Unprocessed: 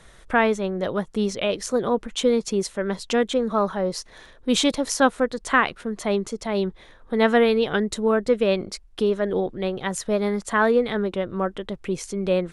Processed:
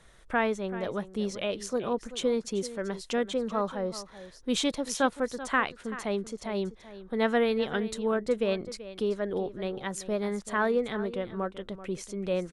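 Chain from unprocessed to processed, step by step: delay 384 ms -14.5 dB; trim -7.5 dB

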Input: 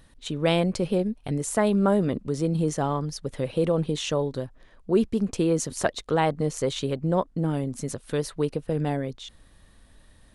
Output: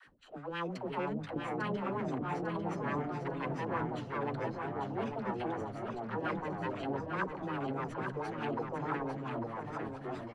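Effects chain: comb filter that takes the minimum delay 0.68 ms; RIAA curve recording; reverse; compression 6:1, threshold -38 dBFS, peak gain reduction 19.5 dB; reverse; phase dispersion lows, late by 79 ms, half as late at 370 Hz; LFO low-pass sine 5.6 Hz 460–2200 Hz; ever faster or slower copies 339 ms, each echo -3 st, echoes 2; on a send: feedback delay 848 ms, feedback 33%, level -6 dB; on the sum: trim +1.5 dB

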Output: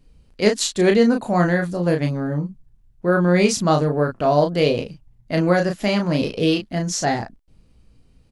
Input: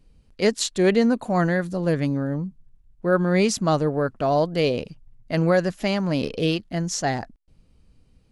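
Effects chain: 1.87–2.28 s: transient shaper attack +2 dB, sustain -8 dB; on a send: early reflections 19 ms -11.5 dB, 34 ms -5 dB; on the sum: trim +2 dB

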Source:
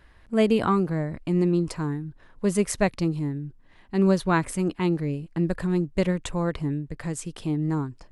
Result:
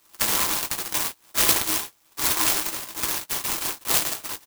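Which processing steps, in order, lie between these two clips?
spectral levelling over time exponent 0.2; resonant low-pass 7.8 kHz, resonance Q 9.8; chord resonator E2 sus4, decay 0.54 s; dynamic bell 870 Hz, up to +4 dB, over -41 dBFS, Q 0.76; granular stretch 0.55×, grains 21 ms; gate -30 dBFS, range -33 dB; tilt EQ +4.5 dB/octave; static phaser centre 560 Hz, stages 6; comb 6 ms; sampling jitter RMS 0.084 ms; trim +1.5 dB

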